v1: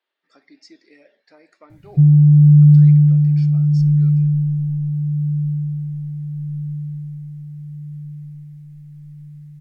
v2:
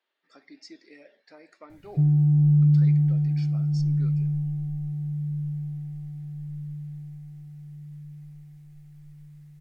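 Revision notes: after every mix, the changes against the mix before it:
background: add ten-band EQ 125 Hz -11 dB, 250 Hz -5 dB, 500 Hz +10 dB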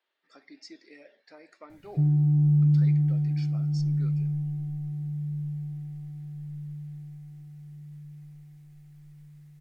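background: add bell 260 Hz +6 dB 0.46 oct; master: add low shelf 160 Hz -5.5 dB

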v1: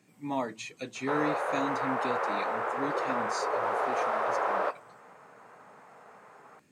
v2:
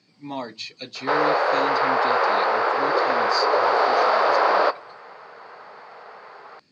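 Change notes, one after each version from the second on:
background +10.0 dB; master: add synth low-pass 4600 Hz, resonance Q 9.6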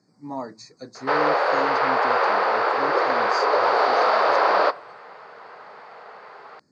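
speech: add Butterworth band-stop 3000 Hz, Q 0.71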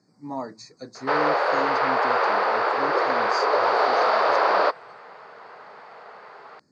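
reverb: off

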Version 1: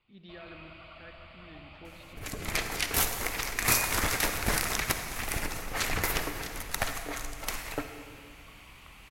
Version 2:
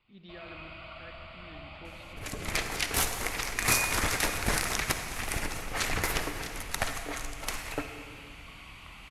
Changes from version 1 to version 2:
first sound: send +7.0 dB; master: add LPF 12000 Hz 24 dB/oct

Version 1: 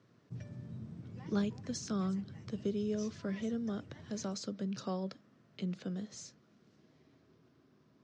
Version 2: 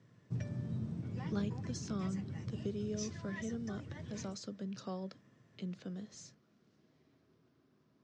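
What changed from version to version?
speech -4.5 dB; background +6.5 dB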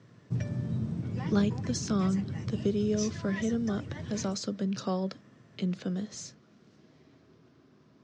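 speech +11.0 dB; background +7.0 dB

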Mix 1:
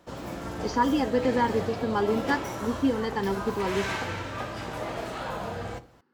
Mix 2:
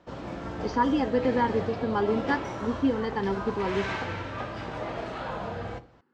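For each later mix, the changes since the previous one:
master: add air absorption 130 m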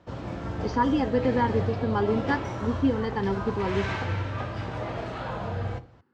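master: add bell 94 Hz +10 dB 1.1 oct

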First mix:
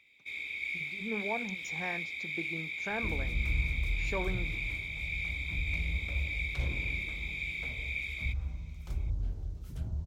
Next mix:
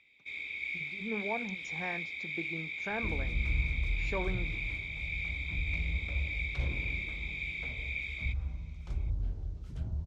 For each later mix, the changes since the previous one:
master: add air absorption 78 m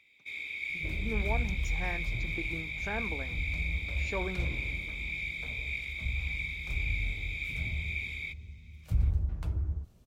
second sound: entry -2.20 s; master: remove air absorption 78 m

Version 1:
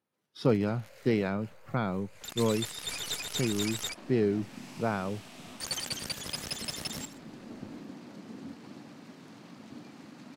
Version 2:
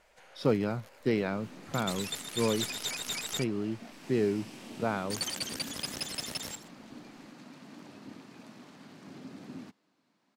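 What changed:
first sound: entry -0.50 s; second sound: entry -2.80 s; master: add low shelf 160 Hz -5.5 dB

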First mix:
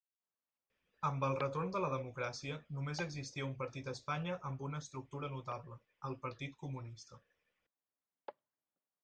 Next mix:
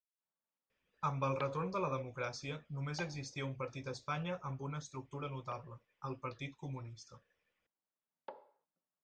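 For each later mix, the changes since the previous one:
reverb: on, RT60 0.55 s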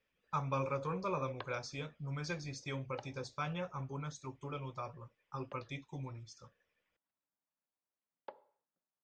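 speech: entry -0.70 s; background: send -6.5 dB

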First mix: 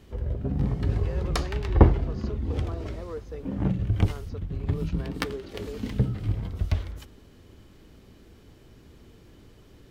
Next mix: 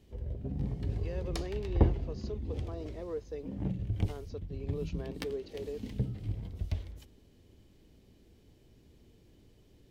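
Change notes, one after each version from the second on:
background -8.5 dB; master: add bell 1300 Hz -10 dB 0.93 oct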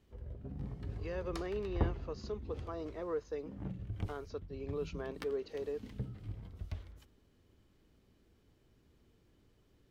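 background -8.0 dB; master: add bell 1300 Hz +10 dB 0.93 oct

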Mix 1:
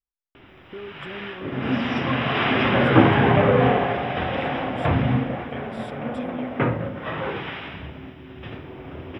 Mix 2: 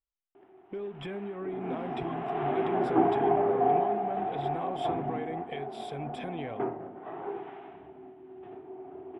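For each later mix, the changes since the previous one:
background: add double band-pass 530 Hz, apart 0.9 oct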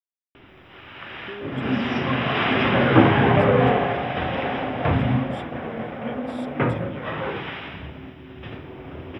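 speech: entry +0.55 s; background: remove double band-pass 530 Hz, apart 0.9 oct

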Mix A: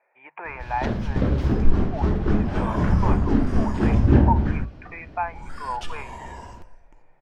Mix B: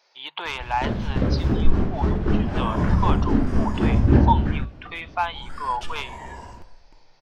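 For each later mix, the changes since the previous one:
speech: remove rippled Chebyshev low-pass 2500 Hz, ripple 6 dB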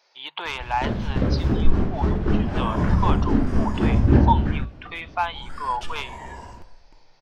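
none

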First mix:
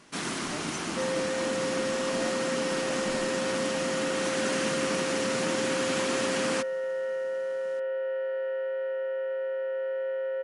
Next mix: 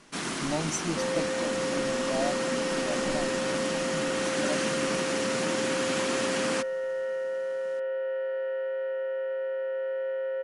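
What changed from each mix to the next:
speech +10.5 dB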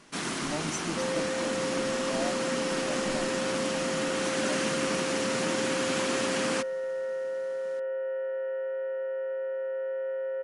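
speech -4.5 dB; second sound: add air absorption 430 m

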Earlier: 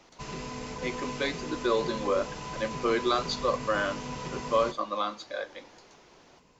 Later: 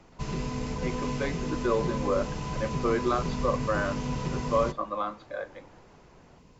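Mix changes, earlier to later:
speech: add LPF 1800 Hz 12 dB/oct; background: add low shelf 270 Hz +12 dB

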